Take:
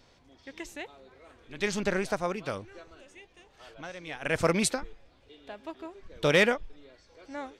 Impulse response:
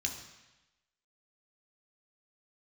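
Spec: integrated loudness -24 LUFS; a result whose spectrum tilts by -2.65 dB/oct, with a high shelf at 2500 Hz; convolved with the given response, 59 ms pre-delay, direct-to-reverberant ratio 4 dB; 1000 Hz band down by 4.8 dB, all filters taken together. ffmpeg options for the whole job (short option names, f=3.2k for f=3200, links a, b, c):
-filter_complex "[0:a]equalizer=f=1k:t=o:g=-8.5,highshelf=f=2.5k:g=7,asplit=2[a][b];[1:a]atrim=start_sample=2205,adelay=59[c];[b][c]afir=irnorm=-1:irlink=0,volume=-6.5dB[d];[a][d]amix=inputs=2:normalize=0,volume=3dB"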